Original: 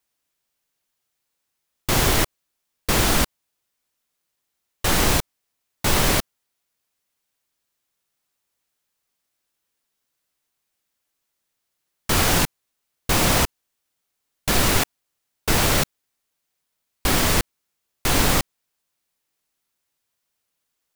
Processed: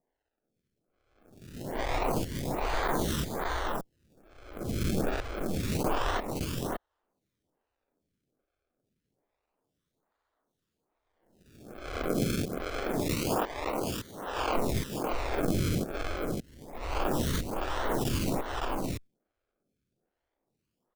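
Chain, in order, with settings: reverse spectral sustain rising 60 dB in 1.10 s; 12.11–14.56 s: high-pass 240 Hz 12 dB/octave; compression 2.5:1, threshold -18 dBFS, peak gain reduction 5.5 dB; decimation with a swept rate 32×, swing 100% 0.27 Hz; delay 564 ms -3.5 dB; lamp-driven phase shifter 1.2 Hz; trim -5.5 dB

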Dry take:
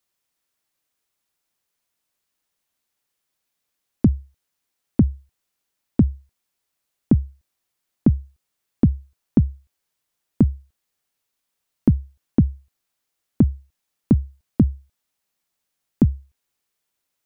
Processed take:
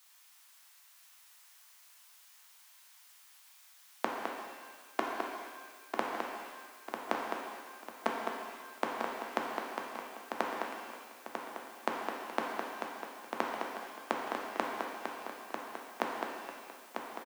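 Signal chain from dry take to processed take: high-pass 780 Hz 24 dB/octave; echo from a far wall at 36 m, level -14 dB; peak limiter -33.5 dBFS, peak gain reduction 9 dB; transient shaper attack +5 dB, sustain +1 dB; on a send: feedback delay 946 ms, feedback 41%, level -6.5 dB; on the sum: pitch-shifted reverb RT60 1.5 s, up +7 st, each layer -8 dB, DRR 0 dB; trim +15 dB

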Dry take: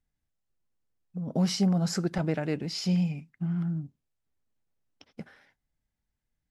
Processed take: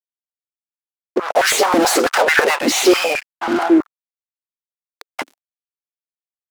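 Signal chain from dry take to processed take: spectral gate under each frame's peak -15 dB weak; fuzz box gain 48 dB, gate -57 dBFS; step-sequenced high-pass 9.2 Hz 270–1600 Hz; trim -2.5 dB

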